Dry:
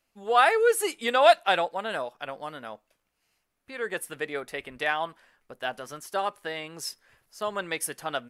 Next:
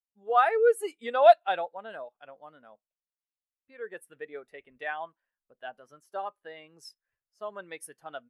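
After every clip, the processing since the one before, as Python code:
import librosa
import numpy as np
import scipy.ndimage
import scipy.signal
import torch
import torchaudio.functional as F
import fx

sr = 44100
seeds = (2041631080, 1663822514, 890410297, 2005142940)

y = fx.spectral_expand(x, sr, expansion=1.5)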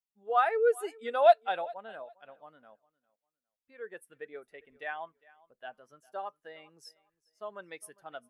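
y = fx.echo_feedback(x, sr, ms=404, feedback_pct=21, wet_db=-23.0)
y = y * librosa.db_to_amplitude(-3.5)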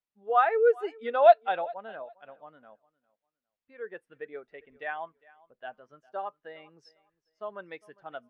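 y = fx.air_absorb(x, sr, metres=220.0)
y = y * librosa.db_to_amplitude(4.0)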